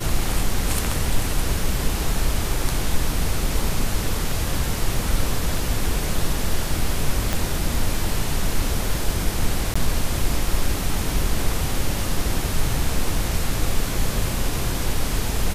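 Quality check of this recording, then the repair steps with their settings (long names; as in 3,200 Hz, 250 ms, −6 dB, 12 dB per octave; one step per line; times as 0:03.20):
0:07.33: click −7 dBFS
0:09.74–0:09.76: drop-out 15 ms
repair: click removal
repair the gap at 0:09.74, 15 ms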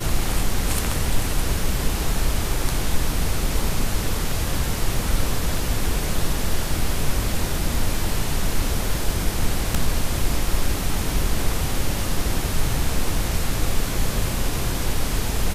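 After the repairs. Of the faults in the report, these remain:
0:07.33: click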